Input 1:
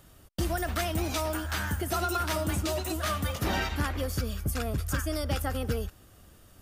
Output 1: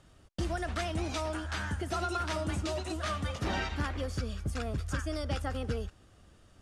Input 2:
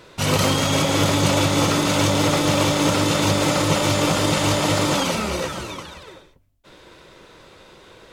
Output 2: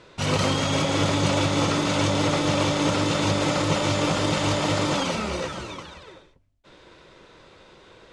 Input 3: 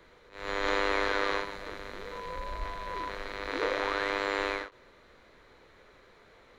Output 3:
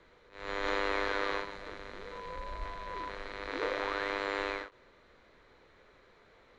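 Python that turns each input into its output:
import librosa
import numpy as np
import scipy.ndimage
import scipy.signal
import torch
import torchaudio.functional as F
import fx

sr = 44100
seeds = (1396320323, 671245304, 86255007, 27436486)

y = fx.mod_noise(x, sr, seeds[0], snr_db=33)
y = scipy.signal.sosfilt(scipy.signal.bessel(8, 6600.0, 'lowpass', norm='mag', fs=sr, output='sos'), y)
y = F.gain(torch.from_numpy(y), -3.5).numpy()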